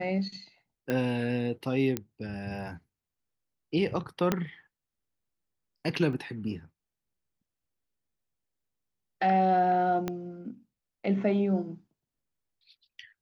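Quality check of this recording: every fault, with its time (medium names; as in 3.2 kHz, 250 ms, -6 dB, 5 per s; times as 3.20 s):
0.90 s: pop -17 dBFS
1.97 s: pop -15 dBFS
4.32 s: pop -11 dBFS
6.13 s: dropout 2.1 ms
10.08 s: pop -17 dBFS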